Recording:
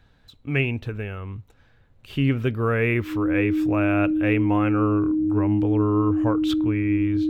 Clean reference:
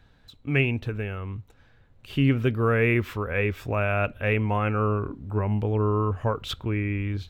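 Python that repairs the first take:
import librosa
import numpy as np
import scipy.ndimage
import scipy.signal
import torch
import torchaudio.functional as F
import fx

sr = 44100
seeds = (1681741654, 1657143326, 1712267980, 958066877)

y = fx.notch(x, sr, hz=310.0, q=30.0)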